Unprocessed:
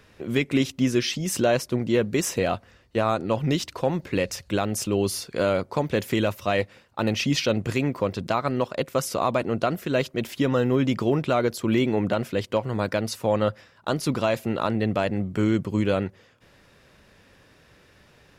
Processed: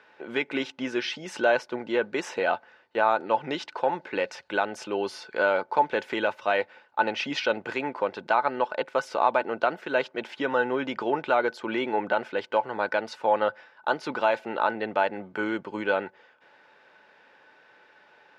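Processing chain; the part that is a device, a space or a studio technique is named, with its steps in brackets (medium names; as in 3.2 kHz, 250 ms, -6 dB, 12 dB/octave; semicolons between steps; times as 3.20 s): tin-can telephone (band-pass 450–3100 Hz; small resonant body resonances 870/1500 Hz, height 14 dB, ringing for 65 ms)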